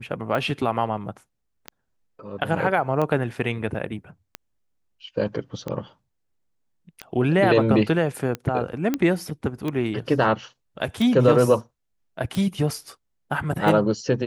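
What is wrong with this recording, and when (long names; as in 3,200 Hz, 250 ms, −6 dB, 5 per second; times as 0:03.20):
scratch tick 45 rpm −15 dBFS
0:08.94: click −10 dBFS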